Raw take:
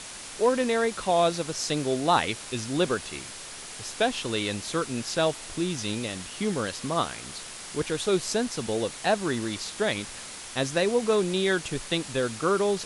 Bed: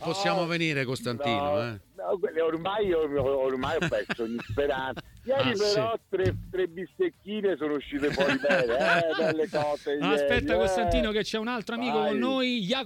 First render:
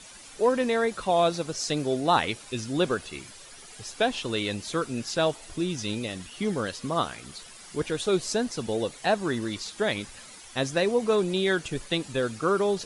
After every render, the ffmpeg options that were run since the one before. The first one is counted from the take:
-af "afftdn=nr=11:nf=-41"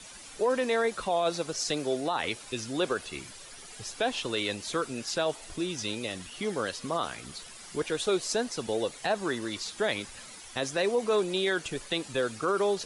-filter_complex "[0:a]acrossover=split=320|880|2200[s0][s1][s2][s3];[s0]acompressor=threshold=0.01:ratio=6[s4];[s4][s1][s2][s3]amix=inputs=4:normalize=0,alimiter=limit=0.126:level=0:latency=1:release=24"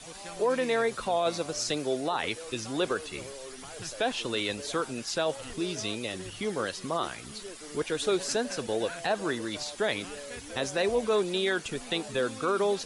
-filter_complex "[1:a]volume=0.126[s0];[0:a][s0]amix=inputs=2:normalize=0"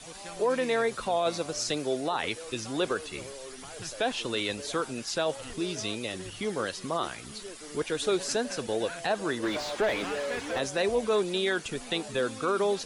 -filter_complex "[0:a]asplit=3[s0][s1][s2];[s0]afade=t=out:st=9.42:d=0.02[s3];[s1]asplit=2[s4][s5];[s5]highpass=f=720:p=1,volume=15.8,asoftclip=type=tanh:threshold=0.133[s6];[s4][s6]amix=inputs=2:normalize=0,lowpass=f=1100:p=1,volume=0.501,afade=t=in:st=9.42:d=0.02,afade=t=out:st=10.58:d=0.02[s7];[s2]afade=t=in:st=10.58:d=0.02[s8];[s3][s7][s8]amix=inputs=3:normalize=0"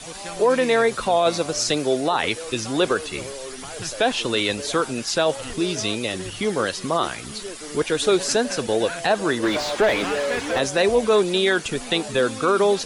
-af "volume=2.66"

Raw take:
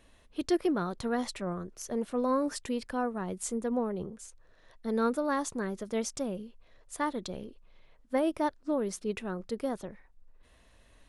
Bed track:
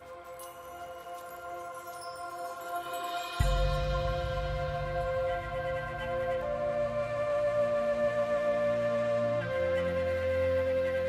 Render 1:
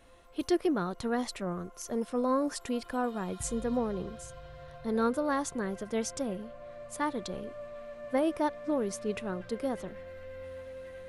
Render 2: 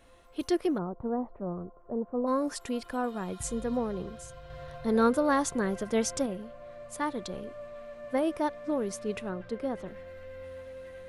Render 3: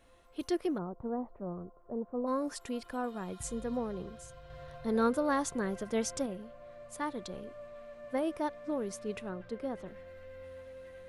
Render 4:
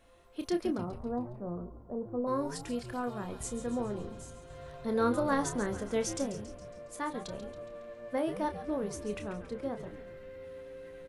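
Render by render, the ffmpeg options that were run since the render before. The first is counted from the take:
-filter_complex "[1:a]volume=0.178[s0];[0:a][s0]amix=inputs=2:normalize=0"
-filter_complex "[0:a]asplit=3[s0][s1][s2];[s0]afade=t=out:st=0.77:d=0.02[s3];[s1]lowpass=f=1000:w=0.5412,lowpass=f=1000:w=1.3066,afade=t=in:st=0.77:d=0.02,afade=t=out:st=2.26:d=0.02[s4];[s2]afade=t=in:st=2.26:d=0.02[s5];[s3][s4][s5]amix=inputs=3:normalize=0,asettb=1/sr,asplit=3[s6][s7][s8];[s6]atrim=end=9.294[s9];[s7]atrim=start=9.29:end=9.86,asetpts=PTS-STARTPTS,afade=t=in:d=0.004:c=qsin,afade=t=out:st=0.566:d=0.004:c=qsin,lowpass=f=3000:p=1[s10];[s8]atrim=start=9.856[s11];[s9][s10]acrossfade=d=0.004:c1=hsin:c2=qsin[s12];[s12][s11]acrossfade=d=0.004:c1=qsin:c2=hsin,asplit=3[s13][s14][s15];[s13]atrim=end=4.502[s16];[s14]atrim=start=4.498:end=6.262,asetpts=PTS-STARTPTS,volume=1.68[s17];[s15]atrim=start=6.258[s18];[s16][s17]acrossfade=d=0.004:c1=hsin:c2=hsin[s19];[s19][s18]acrossfade=d=0.004:c1=hsin:c2=hsin"
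-af "volume=0.596"
-filter_complex "[0:a]asplit=2[s0][s1];[s1]adelay=29,volume=0.376[s2];[s0][s2]amix=inputs=2:normalize=0,asplit=2[s3][s4];[s4]asplit=6[s5][s6][s7][s8][s9][s10];[s5]adelay=138,afreqshift=-120,volume=0.266[s11];[s6]adelay=276,afreqshift=-240,volume=0.146[s12];[s7]adelay=414,afreqshift=-360,volume=0.0804[s13];[s8]adelay=552,afreqshift=-480,volume=0.0442[s14];[s9]adelay=690,afreqshift=-600,volume=0.0243[s15];[s10]adelay=828,afreqshift=-720,volume=0.0133[s16];[s11][s12][s13][s14][s15][s16]amix=inputs=6:normalize=0[s17];[s3][s17]amix=inputs=2:normalize=0"

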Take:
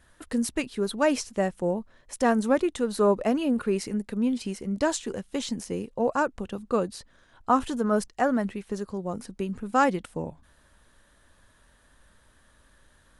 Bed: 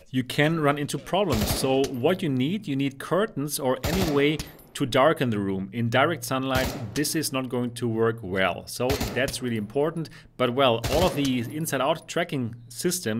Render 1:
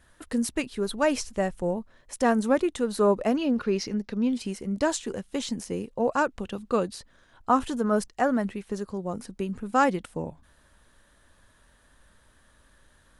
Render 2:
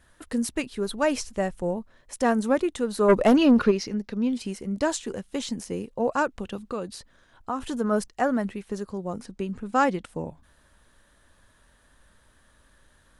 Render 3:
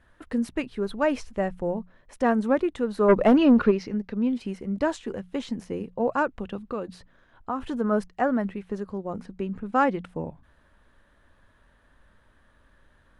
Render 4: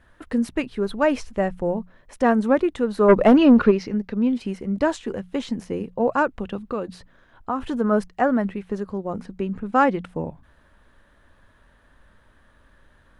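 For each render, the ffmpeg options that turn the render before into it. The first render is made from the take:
-filter_complex "[0:a]asplit=3[s0][s1][s2];[s0]afade=t=out:st=0.7:d=0.02[s3];[s1]asubboost=boost=6:cutoff=110,afade=t=in:st=0.7:d=0.02,afade=t=out:st=1.76:d=0.02[s4];[s2]afade=t=in:st=1.76:d=0.02[s5];[s3][s4][s5]amix=inputs=3:normalize=0,asettb=1/sr,asplit=3[s6][s7][s8];[s6]atrim=end=3.364[s9];[s7]atrim=start=3.36:end=4.33,asetpts=PTS-STARTPTS,afade=t=in:d=0.004:c=qsin,afade=t=out:st=0.966:d=0.004:c=qsin,highshelf=f=6900:t=q:w=3:g=-8[s10];[s8]atrim=start=4.326[s11];[s9][s10]acrossfade=d=0.004:c1=hsin:c2=qsin[s12];[s12][s11]acrossfade=d=0.004:c1=qsin:c2=hsin,asettb=1/sr,asplit=3[s13][s14][s15];[s13]atrim=end=6.114[s16];[s14]atrim=start=6.11:end=6.95,asetpts=PTS-STARTPTS,afade=t=in:d=0.004:c=qsin,afade=t=out:st=0.836:d=0.004:c=qsin,equalizer=f=3300:w=0.76:g=4.5[s17];[s15]atrim=start=6.946[s18];[s16][s17]acrossfade=d=0.004:c1=hsin:c2=qsin[s19];[s19][s18]acrossfade=d=0.004:c1=qsin:c2=hsin"
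-filter_complex "[0:a]asplit=3[s0][s1][s2];[s0]afade=t=out:st=3.08:d=0.02[s3];[s1]aeval=exprs='0.282*sin(PI/2*1.78*val(0)/0.282)':c=same,afade=t=in:st=3.08:d=0.02,afade=t=out:st=3.7:d=0.02[s4];[s2]afade=t=in:st=3.7:d=0.02[s5];[s3][s4][s5]amix=inputs=3:normalize=0,asettb=1/sr,asplit=3[s6][s7][s8];[s6]atrim=end=6.614[s9];[s7]atrim=start=6.61:end=7.67,asetpts=PTS-STARTPTS,afade=t=in:d=0.004:c=qsin,afade=t=out:st=1.056:d=0.004:c=qsin,acompressor=threshold=0.0282:ratio=2:attack=3.2:release=140:knee=1:detection=peak[s10];[s8]atrim=start=7.666[s11];[s9][s10]acrossfade=d=0.004:c1=hsin:c2=qsin[s12];[s12][s11]acrossfade=d=0.004:c1=qsin:c2=hsin,asettb=1/sr,asplit=3[s13][s14][s15];[s13]atrim=end=9.184[s16];[s14]atrim=start=9.18:end=10.09,asetpts=PTS-STARTPTS,afade=t=in:d=0.004:c=qsin,afade=t=out:st=0.906:d=0.004:c=qsin,lowpass=8500[s17];[s15]atrim=start=10.086[s18];[s16][s17]acrossfade=d=0.004:c1=hsin:c2=qsin[s19];[s19][s18]acrossfade=d=0.004:c1=qsin:c2=hsin"
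-af "bass=f=250:g=1,treble=f=4000:g=-15,bandreject=f=60:t=h:w=6,bandreject=f=120:t=h:w=6,bandreject=f=180:t=h:w=6"
-af "volume=1.58"

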